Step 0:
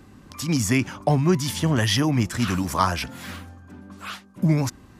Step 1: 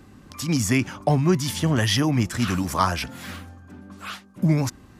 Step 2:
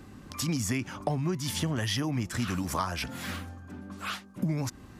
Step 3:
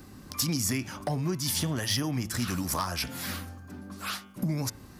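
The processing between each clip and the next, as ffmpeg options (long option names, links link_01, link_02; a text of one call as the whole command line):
ffmpeg -i in.wav -af "bandreject=frequency=980:width=27" out.wav
ffmpeg -i in.wav -af "acompressor=threshold=-27dB:ratio=6" out.wav
ffmpeg -i in.wav -af "volume=21.5dB,asoftclip=hard,volume=-21.5dB,aexciter=amount=2.2:drive=3.9:freq=4200,bandreject=frequency=109.8:width_type=h:width=4,bandreject=frequency=219.6:width_type=h:width=4,bandreject=frequency=329.4:width_type=h:width=4,bandreject=frequency=439.2:width_type=h:width=4,bandreject=frequency=549:width_type=h:width=4,bandreject=frequency=658.8:width_type=h:width=4,bandreject=frequency=768.6:width_type=h:width=4,bandreject=frequency=878.4:width_type=h:width=4,bandreject=frequency=988.2:width_type=h:width=4,bandreject=frequency=1098:width_type=h:width=4,bandreject=frequency=1207.8:width_type=h:width=4,bandreject=frequency=1317.6:width_type=h:width=4,bandreject=frequency=1427.4:width_type=h:width=4,bandreject=frequency=1537.2:width_type=h:width=4,bandreject=frequency=1647:width_type=h:width=4,bandreject=frequency=1756.8:width_type=h:width=4,bandreject=frequency=1866.6:width_type=h:width=4,bandreject=frequency=1976.4:width_type=h:width=4,bandreject=frequency=2086.2:width_type=h:width=4,bandreject=frequency=2196:width_type=h:width=4,bandreject=frequency=2305.8:width_type=h:width=4,bandreject=frequency=2415.6:width_type=h:width=4,bandreject=frequency=2525.4:width_type=h:width=4,bandreject=frequency=2635.2:width_type=h:width=4,bandreject=frequency=2745:width_type=h:width=4,bandreject=frequency=2854.8:width_type=h:width=4,bandreject=frequency=2964.6:width_type=h:width=4,bandreject=frequency=3074.4:width_type=h:width=4,bandreject=frequency=3184.2:width_type=h:width=4,bandreject=frequency=3294:width_type=h:width=4,bandreject=frequency=3403.8:width_type=h:width=4,bandreject=frequency=3513.6:width_type=h:width=4,bandreject=frequency=3623.4:width_type=h:width=4" out.wav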